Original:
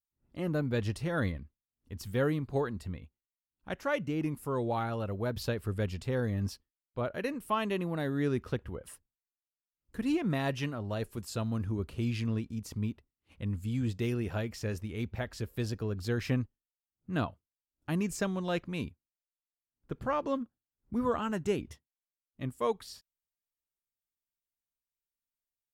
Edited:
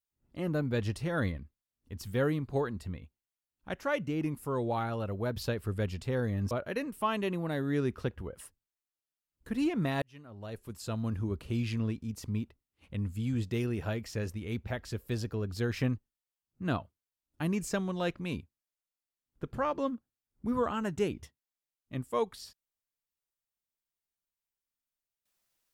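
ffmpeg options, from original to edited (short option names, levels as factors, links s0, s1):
-filter_complex "[0:a]asplit=3[s0][s1][s2];[s0]atrim=end=6.512[s3];[s1]atrim=start=6.988:end=10.5,asetpts=PTS-STARTPTS,afade=t=out:st=3.508:d=0.004:c=hsin[s4];[s2]atrim=start=10.5,asetpts=PTS-STARTPTS,afade=t=in:d=1.08[s5];[s4][s5]concat=n=2:v=0:a=1[s6];[s3][s6]acrossfade=d=0.004:c1=hsin:c2=hsin"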